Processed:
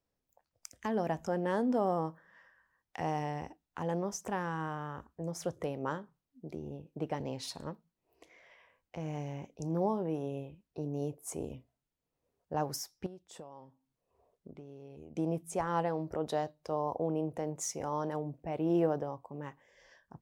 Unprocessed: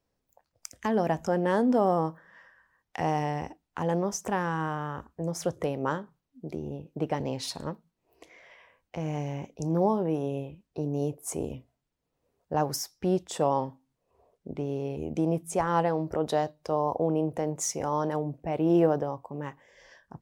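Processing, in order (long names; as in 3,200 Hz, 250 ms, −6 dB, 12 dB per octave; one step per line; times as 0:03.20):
0:13.06–0:15.17: downward compressor 16 to 1, threshold −39 dBFS, peak gain reduction 20 dB
level −6.5 dB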